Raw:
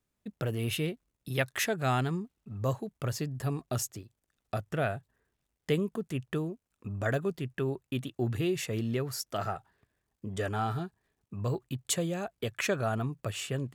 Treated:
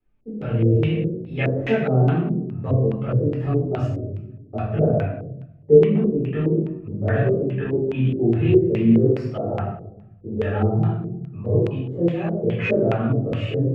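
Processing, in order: tilt shelf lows +7.5 dB, about 1.1 kHz; hum notches 60/120/180/240/300/360/420 Hz; simulated room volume 290 m³, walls mixed, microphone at 4 m; chorus voices 6, 0.43 Hz, delay 21 ms, depth 3.5 ms; LFO low-pass square 2.4 Hz 470–2600 Hz; trim -4 dB

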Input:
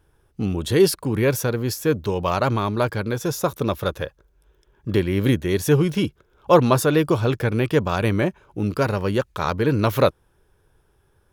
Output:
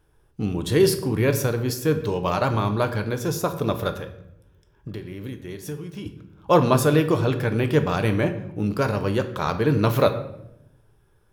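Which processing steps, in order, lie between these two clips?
3.91–6.06 s: compression 12:1, threshold -30 dBFS, peak gain reduction 19 dB; simulated room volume 220 m³, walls mixed, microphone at 0.46 m; trim -2 dB

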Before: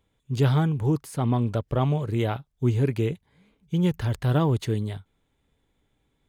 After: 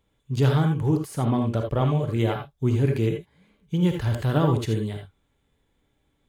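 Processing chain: gated-style reverb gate 100 ms rising, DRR 3.5 dB

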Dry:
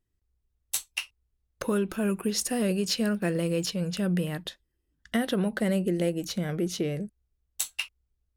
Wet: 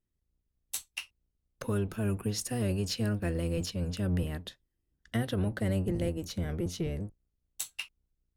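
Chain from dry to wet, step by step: octave divider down 1 oct, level +2 dB; trim -6.5 dB

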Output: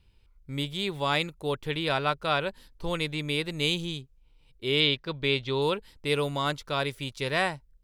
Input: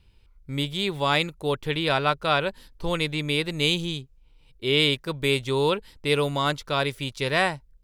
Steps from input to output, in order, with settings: 4.80–5.62 s: resonant high shelf 6.1 kHz -13.5 dB, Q 1.5; trim -4 dB

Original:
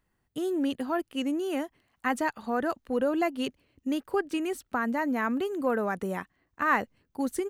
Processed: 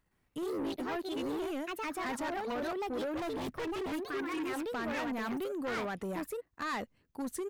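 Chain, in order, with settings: ever faster or slower copies 114 ms, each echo +3 st, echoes 2; in parallel at -2 dB: level held to a coarse grid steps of 19 dB; 4.07–4.47 s: on the sum: spectral replace 410–1000 Hz before; saturation -26.5 dBFS, distortion -10 dB; 3.17–3.92 s: tone controls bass +12 dB, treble -3 dB; wavefolder -26.5 dBFS; trim -5.5 dB

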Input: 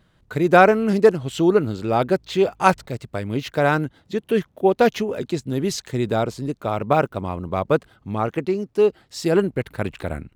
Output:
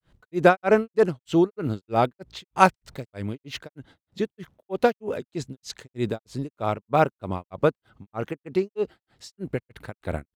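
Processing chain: granulator 259 ms, grains 3.2 per s, pitch spread up and down by 0 st

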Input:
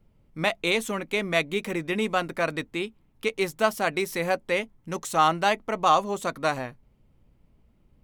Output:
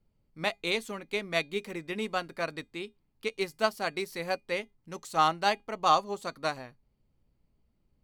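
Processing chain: peaking EQ 4.5 kHz +10.5 dB 0.24 oct; feedback comb 410 Hz, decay 0.2 s, harmonics all, mix 40%; upward expansion 1.5:1, over -36 dBFS; trim +1 dB

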